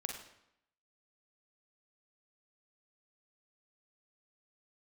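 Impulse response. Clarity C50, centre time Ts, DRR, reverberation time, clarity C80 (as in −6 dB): 4.0 dB, 34 ms, 1.5 dB, 0.80 s, 7.5 dB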